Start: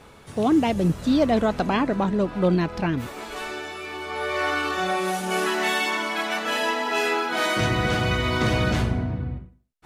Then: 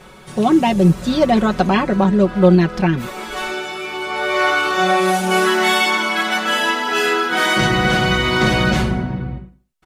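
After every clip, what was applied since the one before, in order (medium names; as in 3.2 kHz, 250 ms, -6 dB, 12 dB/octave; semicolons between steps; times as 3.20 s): comb 5.4 ms, depth 82%; trim +4.5 dB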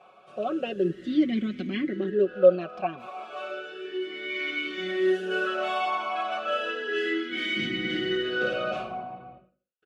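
talking filter a-i 0.33 Hz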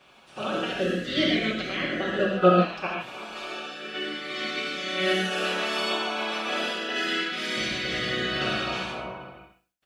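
spectral peaks clipped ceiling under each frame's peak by 26 dB; gated-style reverb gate 170 ms flat, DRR -2 dB; trim -3.5 dB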